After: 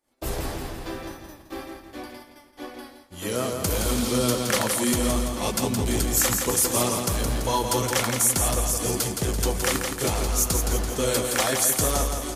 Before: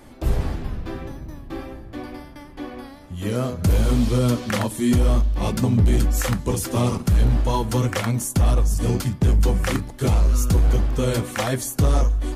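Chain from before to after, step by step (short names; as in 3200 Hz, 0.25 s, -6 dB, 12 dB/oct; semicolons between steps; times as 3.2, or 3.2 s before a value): high shelf 5200 Hz +4 dB; feedback echo 0.168 s, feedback 52%, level -5.5 dB; expander -29 dBFS; tone controls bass -12 dB, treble +5 dB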